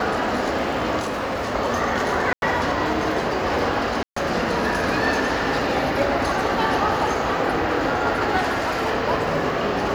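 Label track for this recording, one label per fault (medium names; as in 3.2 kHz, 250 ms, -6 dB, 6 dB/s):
1.000000	1.550000	clipped -22 dBFS
2.330000	2.420000	dropout 91 ms
4.030000	4.160000	dropout 134 ms
8.370000	8.920000	clipped -18 dBFS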